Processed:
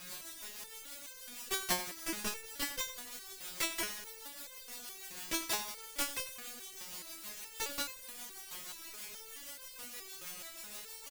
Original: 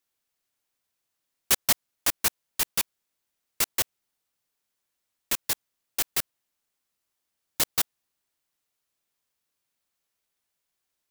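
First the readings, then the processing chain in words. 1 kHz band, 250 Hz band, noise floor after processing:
-4.5 dB, -1.5 dB, -51 dBFS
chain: treble shelf 4.6 kHz -9 dB; peak limiter -22.5 dBFS, peak gain reduction 9.5 dB; upward compressor, threshold -43 dBFS; de-hum 94.83 Hz, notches 27; word length cut 8-bit, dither triangular; rotary cabinet horn 6.3 Hz; on a send: feedback delay 92 ms, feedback 59%, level -13.5 dB; on the sum: resonator arpeggio 4.7 Hz 180–520 Hz; trim +17.5 dB

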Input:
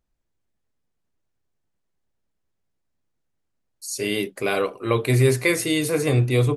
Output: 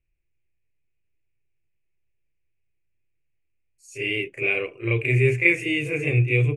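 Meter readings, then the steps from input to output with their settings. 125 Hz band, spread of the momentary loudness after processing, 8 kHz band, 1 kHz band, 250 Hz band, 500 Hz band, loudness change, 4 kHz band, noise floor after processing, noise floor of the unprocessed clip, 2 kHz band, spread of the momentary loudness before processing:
-0.5 dB, 8 LU, -16.5 dB, -14.5 dB, -4.0 dB, -4.0 dB, -0.5 dB, -4.5 dB, -72 dBFS, -75 dBFS, +5.0 dB, 8 LU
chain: FFT filter 140 Hz 0 dB, 210 Hz -18 dB, 350 Hz -3 dB, 970 Hz -17 dB, 1.4 kHz -14 dB, 2.5 kHz +10 dB, 4.1 kHz -26 dB, 7.2 kHz -13 dB, 12 kHz -26 dB; reverse echo 35 ms -7 dB

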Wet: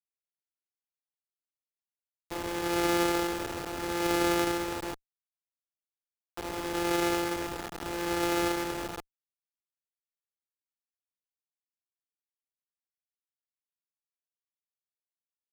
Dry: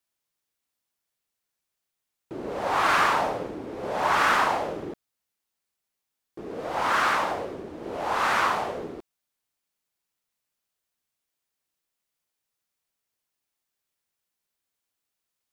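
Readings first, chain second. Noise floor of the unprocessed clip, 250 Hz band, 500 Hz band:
-84 dBFS, +6.0 dB, -1.0 dB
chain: sorted samples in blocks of 256 samples; tone controls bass +4 dB, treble +2 dB; comb 2.4 ms, depth 66%; delay 78 ms -23 dB; in parallel at -1 dB: compression, threshold -29 dBFS, peak gain reduction 12.5 dB; on the sum: resonant low shelf 190 Hz -8 dB, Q 1.5; spring tank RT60 3.8 s, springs 43/50 ms, chirp 70 ms, DRR 17.5 dB; bit crusher 5-bit; sliding maximum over 9 samples; trim -7.5 dB

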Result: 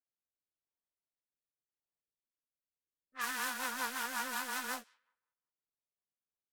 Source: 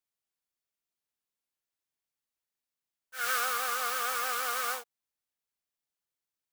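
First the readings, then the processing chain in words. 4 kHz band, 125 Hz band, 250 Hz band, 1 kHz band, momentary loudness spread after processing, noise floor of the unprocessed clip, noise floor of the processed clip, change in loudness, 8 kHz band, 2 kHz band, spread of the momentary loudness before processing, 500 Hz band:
-5.5 dB, no reading, +11.0 dB, -7.5 dB, 6 LU, under -85 dBFS, under -85 dBFS, -6.5 dB, -6.0 dB, -4.5 dB, 7 LU, -9.0 dB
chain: feedback echo behind a high-pass 96 ms, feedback 57%, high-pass 1.8 kHz, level -22.5 dB; ring modulator 250 Hz; time-frequency box 2.00–3.15 s, 620–7800 Hz -20 dB; rotary cabinet horn 0.9 Hz, later 5.5 Hz, at 2.61 s; level-controlled noise filter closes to 1.1 kHz, open at -36.5 dBFS

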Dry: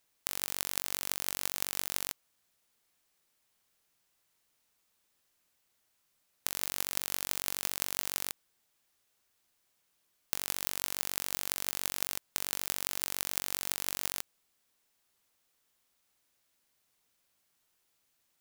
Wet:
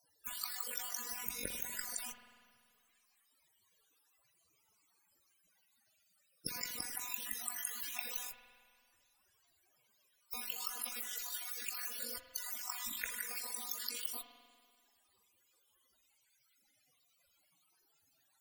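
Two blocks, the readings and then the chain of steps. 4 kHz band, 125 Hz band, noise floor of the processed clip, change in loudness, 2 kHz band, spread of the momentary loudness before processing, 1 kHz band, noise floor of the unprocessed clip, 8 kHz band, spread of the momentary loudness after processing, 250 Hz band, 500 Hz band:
-7.0 dB, -11.0 dB, -76 dBFS, -6.0 dB, -5.0 dB, 4 LU, -6.0 dB, -76 dBFS, -6.0 dB, 5 LU, -6.5 dB, -8.0 dB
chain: random holes in the spectrogram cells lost 31%; Chebyshev shaper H 5 -40 dB, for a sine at -6.5 dBFS; in parallel at -6.5 dB: integer overflow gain 21.5 dB; on the sum: loudest bins only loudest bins 32; spring tank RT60 1.9 s, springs 48 ms, chirp 60 ms, DRR 6 dB; trim +9 dB

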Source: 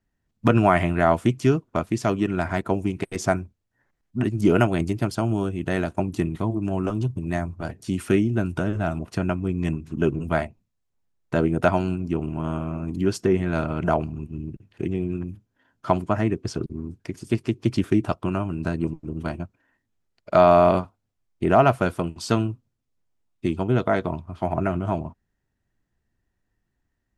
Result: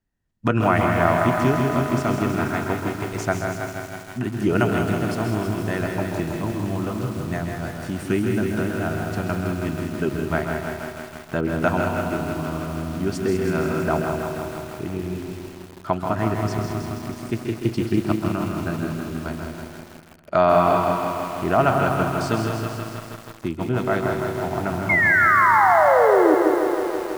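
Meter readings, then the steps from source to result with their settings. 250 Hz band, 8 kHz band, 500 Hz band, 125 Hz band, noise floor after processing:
+0.5 dB, +3.5 dB, +2.0 dB, 0.0 dB, -41 dBFS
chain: dynamic bell 1.5 kHz, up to +4 dB, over -39 dBFS, Q 1.5; painted sound fall, 24.89–26.35 s, 300–2200 Hz -15 dBFS; on a send: multi-head delay 66 ms, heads second and third, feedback 62%, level -8.5 dB; on the sum: bit-crushed delay 161 ms, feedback 80%, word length 6-bit, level -6 dB; trim -3 dB

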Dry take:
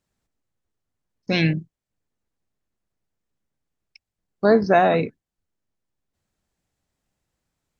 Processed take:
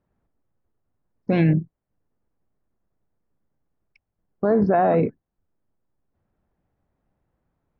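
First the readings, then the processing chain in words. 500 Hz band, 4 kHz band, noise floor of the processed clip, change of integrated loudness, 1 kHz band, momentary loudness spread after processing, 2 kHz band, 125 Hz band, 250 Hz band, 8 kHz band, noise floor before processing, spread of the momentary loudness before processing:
-1.5 dB, under -15 dB, -81 dBFS, -1.0 dB, -2.0 dB, 9 LU, -8.5 dB, +3.0 dB, +1.5 dB, no reading, under -85 dBFS, 15 LU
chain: low-pass 1.2 kHz 12 dB/octave; peak limiter -17 dBFS, peak gain reduction 11 dB; trim +6.5 dB

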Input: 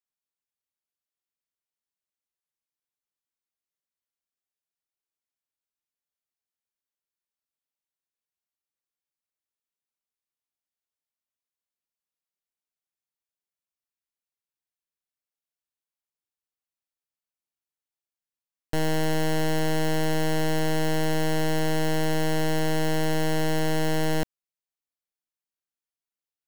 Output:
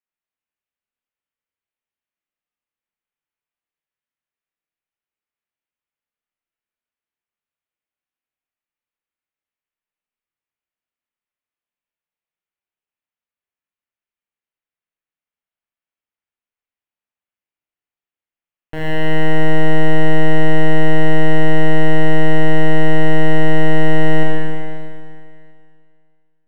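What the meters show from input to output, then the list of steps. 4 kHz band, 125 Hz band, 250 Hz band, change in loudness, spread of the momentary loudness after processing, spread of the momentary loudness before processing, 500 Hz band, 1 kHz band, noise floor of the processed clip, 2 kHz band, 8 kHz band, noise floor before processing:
+2.5 dB, +9.5 dB, +8.5 dB, +8.0 dB, 9 LU, 1 LU, +8.0 dB, +7.0 dB, under -85 dBFS, +10.5 dB, no reading, under -85 dBFS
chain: resonant high shelf 3.7 kHz -13 dB, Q 1.5; Schroeder reverb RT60 2.3 s, combs from 26 ms, DRR -3 dB; trim -1.5 dB

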